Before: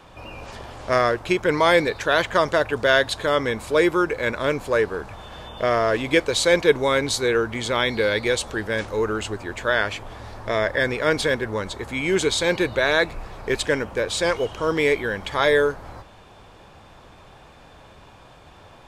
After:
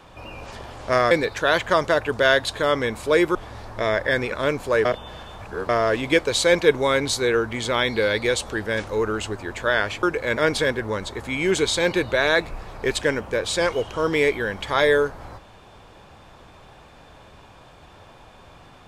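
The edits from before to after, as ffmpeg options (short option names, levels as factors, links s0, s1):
-filter_complex "[0:a]asplit=8[s0][s1][s2][s3][s4][s5][s6][s7];[s0]atrim=end=1.112[s8];[s1]atrim=start=1.748:end=3.992[s9];[s2]atrim=start=10.038:end=11.012[s10];[s3]atrim=start=4.328:end=4.862[s11];[s4]atrim=start=4.858:end=5.702,asetpts=PTS-STARTPTS,areverse[s12];[s5]atrim=start=5.698:end=10.042[s13];[s6]atrim=start=3.988:end=4.332[s14];[s7]atrim=start=11.008[s15];[s8][s9]acrossfade=d=0.004:c1=hsin:c2=hsin[s16];[s16][s10]acrossfade=d=0.004:c1=hsin:c2=hsin[s17];[s17][s11]acrossfade=d=0.004:c1=hsin:c2=hsin[s18];[s18][s12]acrossfade=d=0.004:c1=hsin:c2=hsin[s19];[s19][s13]acrossfade=d=0.004:c1=hsin:c2=hsin[s20];[s20][s14]acrossfade=d=0.004:c1=hsin:c2=hsin[s21];[s21][s15]acrossfade=d=0.004:c1=hsin:c2=hsin"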